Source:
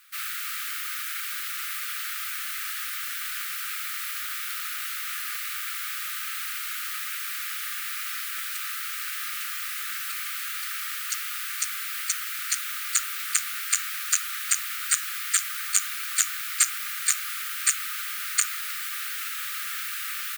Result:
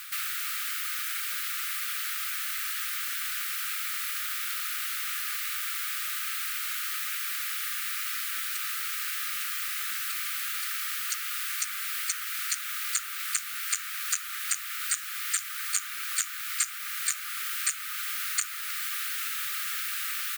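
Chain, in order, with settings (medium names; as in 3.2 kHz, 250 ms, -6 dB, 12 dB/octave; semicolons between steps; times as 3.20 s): three bands compressed up and down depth 70%; trim -2 dB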